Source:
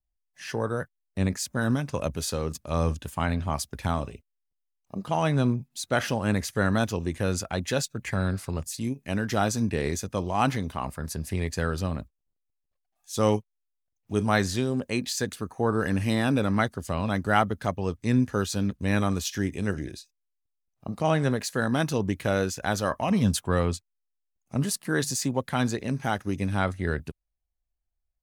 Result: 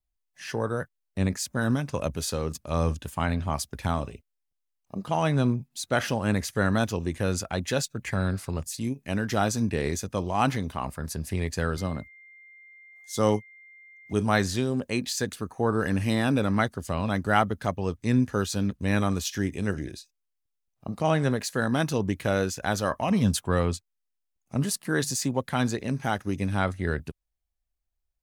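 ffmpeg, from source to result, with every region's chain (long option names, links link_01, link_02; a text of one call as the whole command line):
ffmpeg -i in.wav -filter_complex "[0:a]asettb=1/sr,asplit=3[link_01][link_02][link_03];[link_01]atrim=end=11.774[link_04];[link_02]atrim=start=11.77:end=14.13,asetpts=PTS-STARTPTS,afade=type=in:duration=0.004:curve=qsin,afade=type=out:start_time=2.356:duration=0.004:curve=qsin,highpass=85,equalizer=frequency=2500:width=6.8:gain=-10,aeval=exprs='val(0)+0.00355*sin(2*PI*2100*n/s)':channel_layout=same[link_05];[link_03]atrim=start=14.126[link_06];[link_04][link_05]acrossfade=duration=0.004:curve1=hsin:curve2=qsin[link_07];[link_07][link_06]acrossfade=duration=0.004:curve1=qsin:curve2=hsin" out.wav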